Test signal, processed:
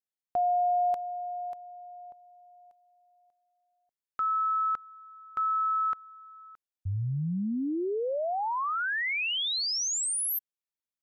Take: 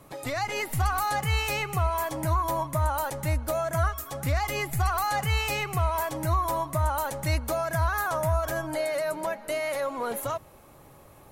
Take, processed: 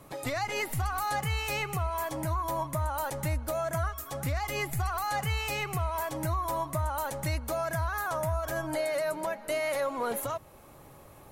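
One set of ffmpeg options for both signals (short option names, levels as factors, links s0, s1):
-af "alimiter=limit=0.0841:level=0:latency=1:release=395"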